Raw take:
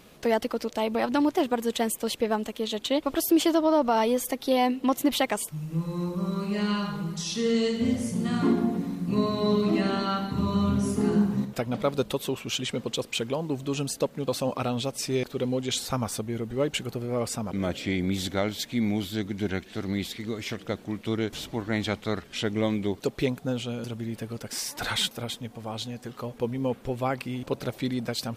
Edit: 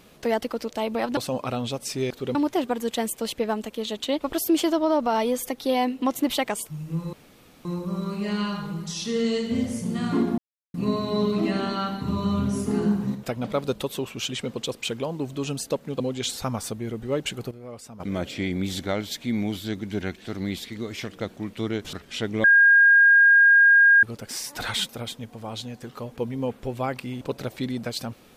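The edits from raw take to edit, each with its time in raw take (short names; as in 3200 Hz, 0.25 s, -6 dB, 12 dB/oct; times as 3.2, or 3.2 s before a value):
5.95 insert room tone 0.52 s
8.68–9.04 mute
14.3–15.48 move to 1.17
16.99–17.48 gain -11.5 dB
21.41–22.15 cut
22.66–24.25 bleep 1620 Hz -11.5 dBFS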